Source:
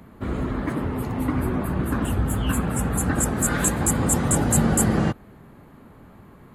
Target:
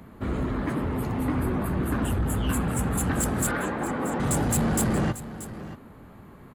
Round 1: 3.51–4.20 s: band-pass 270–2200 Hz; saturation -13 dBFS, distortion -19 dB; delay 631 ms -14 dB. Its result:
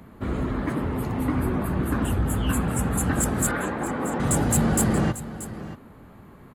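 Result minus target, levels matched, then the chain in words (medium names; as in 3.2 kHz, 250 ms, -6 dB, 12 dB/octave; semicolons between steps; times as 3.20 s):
saturation: distortion -7 dB
3.51–4.20 s: band-pass 270–2200 Hz; saturation -19.5 dBFS, distortion -12 dB; delay 631 ms -14 dB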